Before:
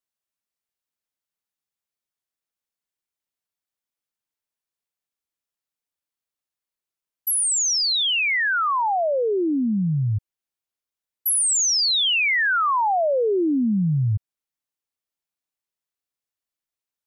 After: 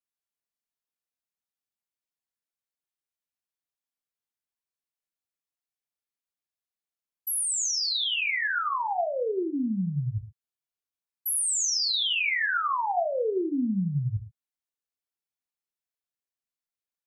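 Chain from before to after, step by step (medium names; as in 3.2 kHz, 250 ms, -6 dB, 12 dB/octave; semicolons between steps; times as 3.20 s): 11.28–11.89 s: bass shelf 430 Hz +12 dB; gated-style reverb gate 150 ms falling, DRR 3.5 dB; trim -8 dB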